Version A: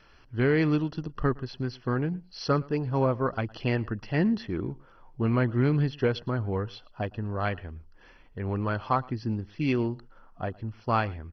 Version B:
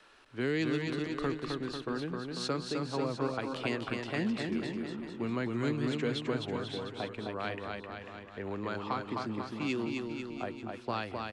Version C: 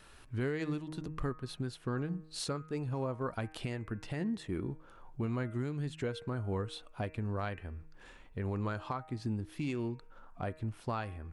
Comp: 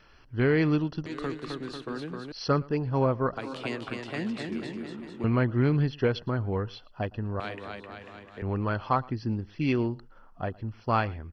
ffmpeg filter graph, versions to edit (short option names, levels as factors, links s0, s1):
-filter_complex "[1:a]asplit=3[s0][s1][s2];[0:a]asplit=4[s3][s4][s5][s6];[s3]atrim=end=1.062[s7];[s0]atrim=start=1.058:end=2.322[s8];[s4]atrim=start=2.318:end=3.372[s9];[s1]atrim=start=3.368:end=5.242[s10];[s5]atrim=start=5.238:end=7.402[s11];[s2]atrim=start=7.398:end=8.422[s12];[s6]atrim=start=8.418[s13];[s7][s8]acrossfade=d=0.004:c1=hsin:c2=hsin[s14];[s14][s9]acrossfade=d=0.004:c1=hsin:c2=hsin[s15];[s15][s10]acrossfade=d=0.004:c1=hsin:c2=hsin[s16];[s16][s11]acrossfade=d=0.004:c1=hsin:c2=hsin[s17];[s17][s12]acrossfade=d=0.004:c1=hsin:c2=hsin[s18];[s18][s13]acrossfade=d=0.004:c1=hsin:c2=hsin"